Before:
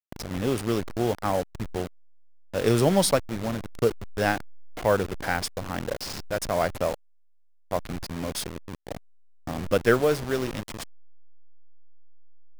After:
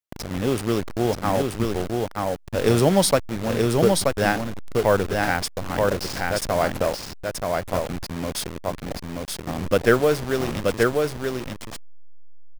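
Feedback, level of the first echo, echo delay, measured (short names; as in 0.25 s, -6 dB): no steady repeat, -3.0 dB, 0.929 s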